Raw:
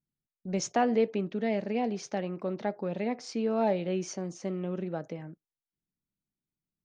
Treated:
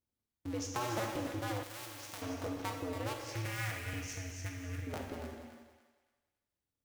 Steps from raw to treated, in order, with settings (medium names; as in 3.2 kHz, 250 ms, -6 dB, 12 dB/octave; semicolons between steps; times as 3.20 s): cycle switcher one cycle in 2, inverted; 3.20–4.87 s: graphic EQ 125/250/500/1000/2000/4000 Hz +4/-11/-10/-11/+9/-6 dB; compression 2.5:1, threshold -37 dBFS, peak gain reduction 11 dB; thinning echo 282 ms, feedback 30%, high-pass 570 Hz, level -9 dB; gated-style reverb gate 490 ms falling, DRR 1 dB; 1.63–2.22 s: spectrum-flattening compressor 2:1; trim -3 dB